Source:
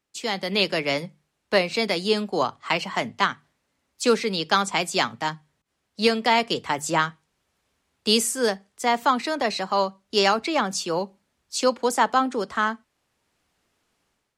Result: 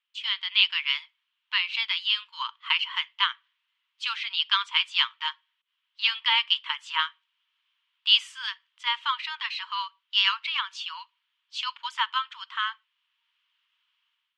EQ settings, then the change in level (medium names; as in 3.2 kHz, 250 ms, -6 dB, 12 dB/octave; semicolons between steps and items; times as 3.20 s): brick-wall FIR high-pass 890 Hz; resonant low-pass 3.1 kHz, resonance Q 6.1; -7.0 dB